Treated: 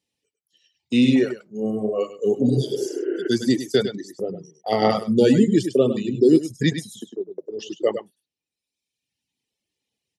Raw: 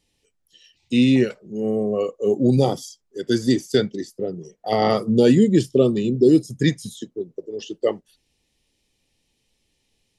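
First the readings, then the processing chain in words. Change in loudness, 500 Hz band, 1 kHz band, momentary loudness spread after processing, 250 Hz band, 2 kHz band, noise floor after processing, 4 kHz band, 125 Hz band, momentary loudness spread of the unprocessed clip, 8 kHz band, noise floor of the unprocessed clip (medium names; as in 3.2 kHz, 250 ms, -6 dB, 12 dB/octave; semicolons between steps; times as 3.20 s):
-1.0 dB, -1.0 dB, -1.5 dB, 15 LU, -1.0 dB, 0.0 dB, under -85 dBFS, 0.0 dB, -3.0 dB, 17 LU, -0.5 dB, -71 dBFS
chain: gate -41 dBFS, range -10 dB; high-pass 120 Hz 12 dB/octave; on a send: delay 102 ms -5 dB; on the sum: spectral replace 2.45–3.26 s, 270–3100 Hz both; reverb removal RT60 1.2 s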